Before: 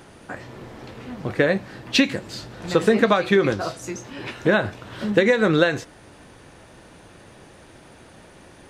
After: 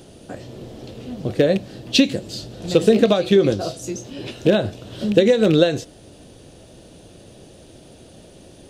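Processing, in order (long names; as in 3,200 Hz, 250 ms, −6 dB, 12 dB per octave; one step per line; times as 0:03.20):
loose part that buzzes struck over −22 dBFS, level −16 dBFS
flat-topped bell 1,400 Hz −12.5 dB
level +3.5 dB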